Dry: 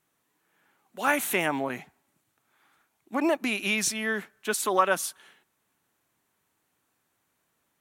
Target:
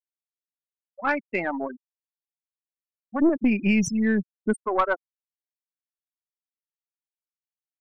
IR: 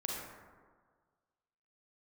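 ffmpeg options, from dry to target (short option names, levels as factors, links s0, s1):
-filter_complex "[0:a]asplit=3[s0][s1][s2];[s0]afade=t=out:st=3.19:d=0.02[s3];[s1]asubboost=boost=10.5:cutoff=230,afade=t=in:st=3.19:d=0.02,afade=t=out:st=4.52:d=0.02[s4];[s2]afade=t=in:st=4.52:d=0.02[s5];[s3][s4][s5]amix=inputs=3:normalize=0,afftfilt=real='re*gte(hypot(re,im),0.126)':imag='im*gte(hypot(re,im),0.126)':win_size=1024:overlap=0.75,aeval=exprs='(tanh(4.47*val(0)+0.35)-tanh(0.35))/4.47':c=same,volume=1.26"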